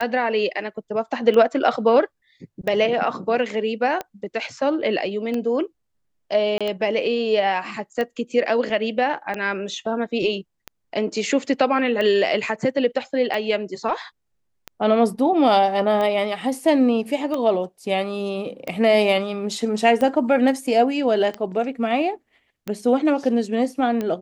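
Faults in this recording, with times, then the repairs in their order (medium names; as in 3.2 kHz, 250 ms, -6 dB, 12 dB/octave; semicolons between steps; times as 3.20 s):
tick 45 rpm -14 dBFS
6.58–6.61 s: dropout 26 ms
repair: de-click; interpolate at 6.58 s, 26 ms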